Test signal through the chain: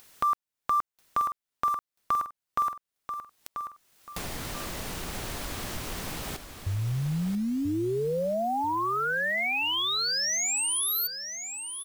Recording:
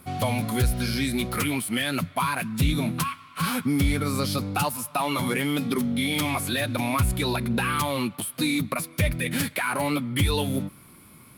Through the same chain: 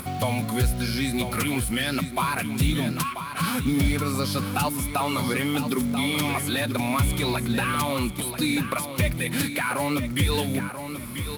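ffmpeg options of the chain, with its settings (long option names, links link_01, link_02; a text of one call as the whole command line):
ffmpeg -i in.wav -af "acompressor=mode=upward:threshold=-27dB:ratio=2.5,acrusher=bits=6:mode=log:mix=0:aa=0.000001,aecho=1:1:987|1974|2961|3948:0.355|0.11|0.0341|0.0106" out.wav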